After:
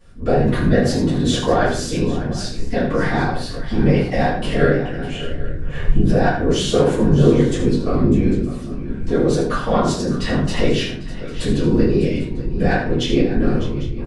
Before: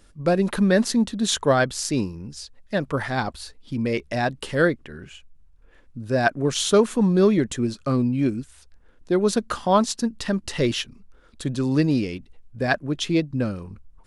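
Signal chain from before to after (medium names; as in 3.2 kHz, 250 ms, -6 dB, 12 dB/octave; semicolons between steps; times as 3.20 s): recorder AGC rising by 20 dB/s; low-pass 3.5 kHz 6 dB/octave; de-hum 73.42 Hz, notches 32; in parallel at 0 dB: peak limiter -18 dBFS, peak gain reduction 11.5 dB; on the sum: saturation -5.5 dBFS, distortion -26 dB; whisper effect; multi-tap echo 77/601/798 ms -9/-14/-17.5 dB; simulated room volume 31 m³, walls mixed, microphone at 1.5 m; trim -10.5 dB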